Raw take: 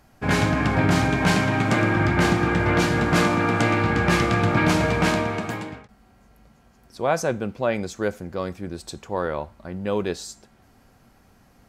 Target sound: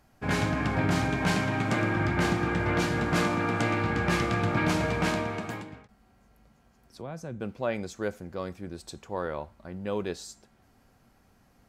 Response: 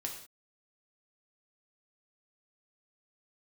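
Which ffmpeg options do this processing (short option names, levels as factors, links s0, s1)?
-filter_complex "[0:a]asettb=1/sr,asplit=3[s0][s1][s2];[s0]atrim=end=5.614[s3];[s1]atrim=start=5.61:end=7.41,asetpts=PTS-STARTPTS,afade=t=in:d=0.004:c=qsin,afade=t=out:st=1.796:d=0.004:c=qsin,acrossover=split=260[s4][s5];[s5]acompressor=threshold=0.0126:ratio=3[s6];[s4][s6]amix=inputs=2:normalize=0[s7];[s2]atrim=start=7.406[s8];[s3][s7]acrossfade=d=0.004:c1=hsin:c2=qsin[s9];[s9][s8]acrossfade=d=0.004:c1=qsin:c2=hsin,volume=0.473"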